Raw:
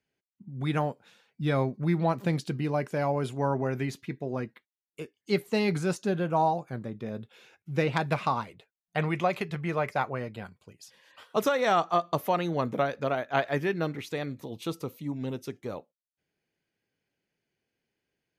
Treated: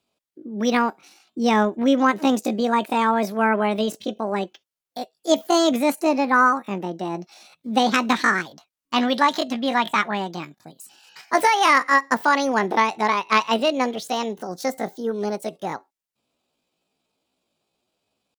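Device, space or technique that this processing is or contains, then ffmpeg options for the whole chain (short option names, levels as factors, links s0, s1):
chipmunk voice: -af "asetrate=70004,aresample=44100,atempo=0.629961,volume=2.51"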